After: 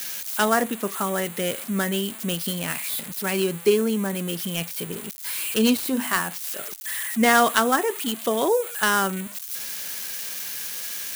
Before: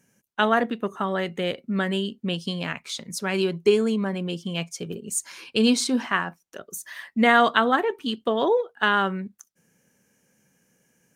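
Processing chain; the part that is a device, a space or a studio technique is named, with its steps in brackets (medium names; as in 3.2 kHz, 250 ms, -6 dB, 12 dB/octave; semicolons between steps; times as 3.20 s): 5.80–6.20 s: hum notches 50/100/150/200/250 Hz; budget class-D amplifier (dead-time distortion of 0.086 ms; zero-crossing glitches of -16.5 dBFS)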